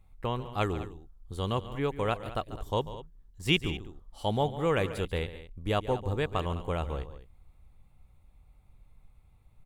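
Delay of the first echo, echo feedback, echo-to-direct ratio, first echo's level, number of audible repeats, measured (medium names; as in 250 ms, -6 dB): 141 ms, no regular repeats, -12.0 dB, -14.5 dB, 2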